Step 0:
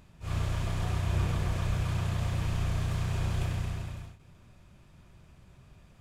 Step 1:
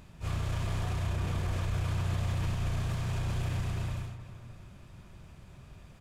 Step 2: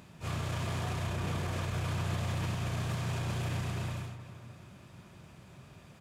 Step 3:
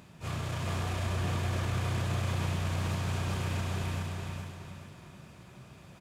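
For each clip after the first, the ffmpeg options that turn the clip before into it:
-filter_complex "[0:a]alimiter=level_in=5dB:limit=-24dB:level=0:latency=1:release=37,volume=-5dB,asplit=2[a][b];[b]adelay=307,lowpass=f=3k:p=1,volume=-12.5dB,asplit=2[c][d];[d]adelay=307,lowpass=f=3k:p=1,volume=0.51,asplit=2[e][f];[f]adelay=307,lowpass=f=3k:p=1,volume=0.51,asplit=2[g][h];[h]adelay=307,lowpass=f=3k:p=1,volume=0.51,asplit=2[i][j];[j]adelay=307,lowpass=f=3k:p=1,volume=0.51[k];[c][e][g][i][k]amix=inputs=5:normalize=0[l];[a][l]amix=inputs=2:normalize=0,volume=4dB"
-af "highpass=120,volume=2dB"
-af "aecho=1:1:419|838|1257|1676|2095:0.708|0.269|0.102|0.0388|0.0148"

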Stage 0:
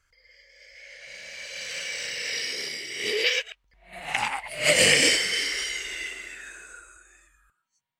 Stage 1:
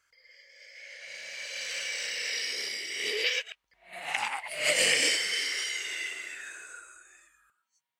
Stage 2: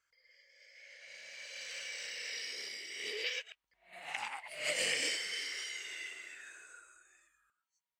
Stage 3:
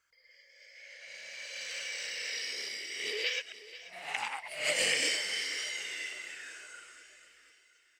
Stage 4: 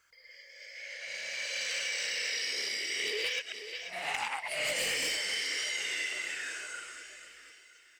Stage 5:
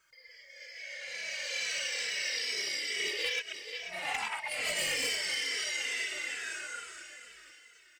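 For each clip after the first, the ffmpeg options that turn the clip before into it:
-filter_complex "[0:a]highpass=f=490:p=1,asplit=2[a][b];[b]acompressor=threshold=-31dB:ratio=6,volume=2.5dB[c];[a][c]amix=inputs=2:normalize=0,volume=-7.5dB"
-af "equalizer=f=11k:t=o:w=0.29:g=-7.5,volume=-9dB"
-af "aecho=1:1:486|972|1458|1944|2430:0.158|0.084|0.0445|0.0236|0.0125,volume=4.5dB"
-af "volume=27.5dB,asoftclip=hard,volume=-27.5dB,acompressor=threshold=-38dB:ratio=6,volume=7.5dB"
-filter_complex "[0:a]asplit=2[a][b];[b]adelay=2.7,afreqshift=-2.3[c];[a][c]amix=inputs=2:normalize=1,volume=3dB"

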